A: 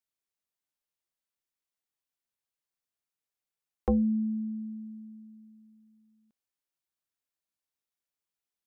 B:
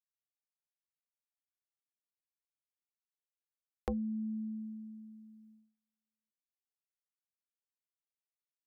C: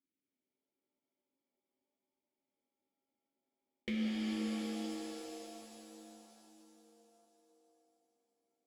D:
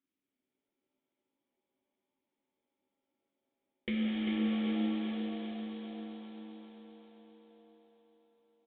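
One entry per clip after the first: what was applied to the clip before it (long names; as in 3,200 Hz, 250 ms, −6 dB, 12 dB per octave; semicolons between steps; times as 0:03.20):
downward compressor 6 to 1, threshold −31 dBFS, peak gain reduction 8.5 dB; reverb reduction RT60 0.55 s; noise gate −59 dBFS, range −27 dB; level −2 dB
sample-rate reduction 1,500 Hz, jitter 20%; formant filter i; reverb with rising layers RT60 3.4 s, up +7 semitones, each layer −2 dB, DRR −0.5 dB; level +10.5 dB
on a send: repeating echo 395 ms, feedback 58%, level −6 dB; on the sum: downsampling to 8,000 Hz; level +3 dB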